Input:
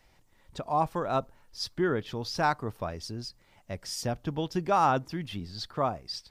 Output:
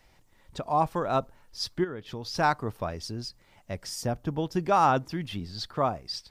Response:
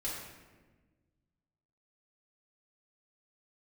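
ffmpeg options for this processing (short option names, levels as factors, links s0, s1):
-filter_complex "[0:a]asplit=3[s0][s1][s2];[s0]afade=t=out:st=1.83:d=0.02[s3];[s1]acompressor=threshold=0.02:ratio=16,afade=t=in:st=1.83:d=0.02,afade=t=out:st=2.33:d=0.02[s4];[s2]afade=t=in:st=2.33:d=0.02[s5];[s3][s4][s5]amix=inputs=3:normalize=0,asettb=1/sr,asplit=3[s6][s7][s8];[s6]atrim=end=3.894[s9];[s7]atrim=start=3.89:end=4.57,asetpts=PTS-STARTPTS,afade=t=in:d=0.004:c=qsin,afade=t=out:st=0.676:d=0.004:c=qsin,equalizer=f=3300:w=0.82:g=-6[s10];[s8]atrim=start=4.566[s11];[s9][s10]acrossfade=d=0.004:c1=hsin:c2=qsin[s12];[s12][s11]acrossfade=d=0.004:c1=qsin:c2=hsin,volume=1.26"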